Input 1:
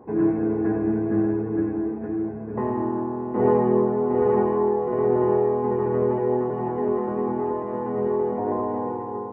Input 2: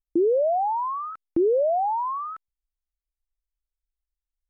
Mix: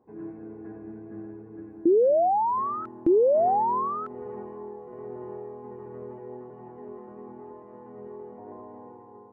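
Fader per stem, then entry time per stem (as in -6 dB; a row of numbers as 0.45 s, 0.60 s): -18.0 dB, +1.0 dB; 0.00 s, 1.70 s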